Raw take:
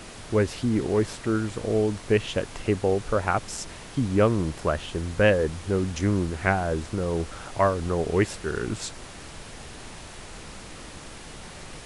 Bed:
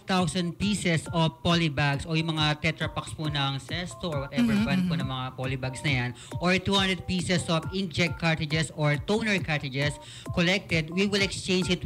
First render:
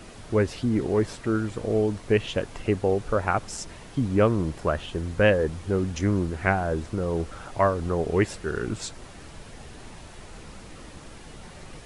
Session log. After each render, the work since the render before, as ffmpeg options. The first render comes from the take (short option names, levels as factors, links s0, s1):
-af "afftdn=nr=6:nf=-42"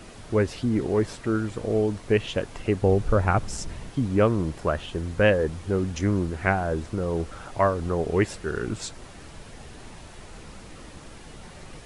-filter_complex "[0:a]asettb=1/sr,asplit=3[s0][s1][s2];[s0]atrim=end=2.824[s3];[s1]atrim=start=2.82:end=3.9,asetpts=PTS-STARTPTS,afade=t=in:d=0.004:c=qsin,afade=t=out:st=1.076:d=0.004:c=qsin,lowshelf=f=200:g=10.5[s4];[s2]atrim=start=3.896[s5];[s3][s4]acrossfade=d=0.004:c1=hsin:c2=qsin[s6];[s6][s5]acrossfade=d=0.004:c1=qsin:c2=hsin"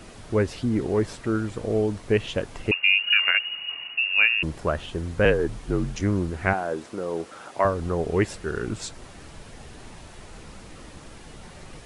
-filter_complex "[0:a]asettb=1/sr,asplit=3[s0][s1][s2];[s0]atrim=end=2.714[s3];[s1]atrim=start=2.71:end=4.43,asetpts=PTS-STARTPTS,afade=t=in:d=0.004:c=qsin,afade=t=out:st=1.716:d=0.004:c=qsin,lowpass=f=2500:t=q:w=0.5098,lowpass=f=2500:t=q:w=0.6013,lowpass=f=2500:t=q:w=0.9,lowpass=f=2500:t=q:w=2.563,afreqshift=-2900[s4];[s2]atrim=start=4.426[s5];[s3][s4]acrossfade=d=0.004:c1=hsin:c2=qsin[s6];[s6][s5]acrossfade=d=0.004:c1=qsin:c2=hsin,asettb=1/sr,asplit=3[s7][s8][s9];[s7]atrim=end=5.254[s10];[s8]atrim=start=5.25:end=6.01,asetpts=PTS-STARTPTS,afade=t=in:d=0.004:c=qsin,afade=t=out:st=0.756:d=0.004:c=qsin,afreqshift=-51[s11];[s9]atrim=start=6.006[s12];[s10][s11]acrossfade=d=0.004:c1=hsin:c2=qsin[s13];[s13][s12]acrossfade=d=0.004:c1=qsin:c2=hsin,asettb=1/sr,asplit=3[s14][s15][s16];[s14]atrim=end=6.534[s17];[s15]atrim=start=6.53:end=7.65,asetpts=PTS-STARTPTS,afade=t=in:d=0.004:c=qsin,afade=t=out:st=1.116:d=0.004:c=qsin,highpass=270[s18];[s16]atrim=start=7.646[s19];[s17][s18]acrossfade=d=0.004:c1=hsin:c2=qsin[s20];[s20][s19]acrossfade=d=0.004:c1=qsin:c2=hsin"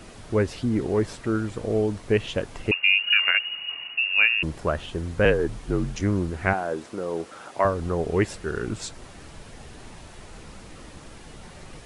-af anull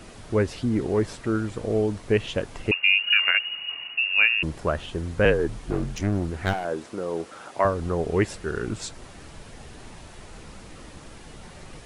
-filter_complex "[0:a]asettb=1/sr,asplit=3[s0][s1][s2];[s0]atrim=end=5.654[s3];[s1]atrim=start=5.65:end=6.65,asetpts=PTS-STARTPTS,afade=t=in:d=0.004:c=qsin,afade=t=out:st=0.996:d=0.004:c=qsin,aeval=exprs='clip(val(0),-1,0.0447)':c=same[s4];[s2]atrim=start=6.646[s5];[s3][s4]acrossfade=d=0.004:c1=hsin:c2=qsin[s6];[s6][s5]acrossfade=d=0.004:c1=qsin:c2=hsin"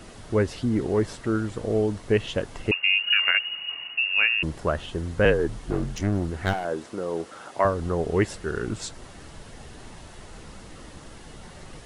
-af "bandreject=f=2400:w=16"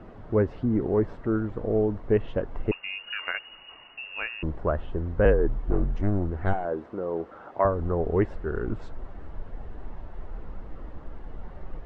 -af "lowpass=1200,asubboost=boost=4:cutoff=57"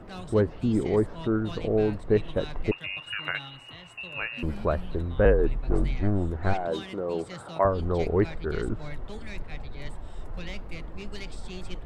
-filter_complex "[1:a]volume=0.15[s0];[0:a][s0]amix=inputs=2:normalize=0"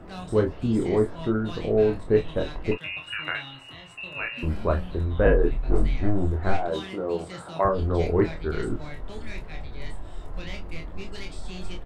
-filter_complex "[0:a]asplit=2[s0][s1];[s1]adelay=23,volume=0.355[s2];[s0][s2]amix=inputs=2:normalize=0,aecho=1:1:26|37:0.501|0.299"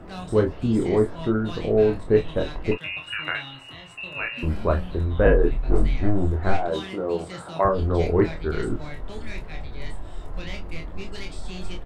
-af "volume=1.26"